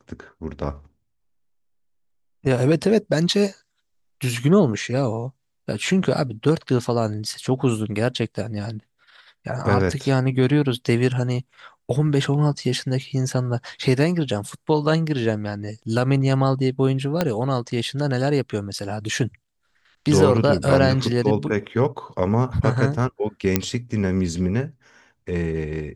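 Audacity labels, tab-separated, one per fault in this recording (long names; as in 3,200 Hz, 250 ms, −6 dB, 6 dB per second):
17.210000	17.210000	click −6 dBFS
23.560000	23.560000	click −2 dBFS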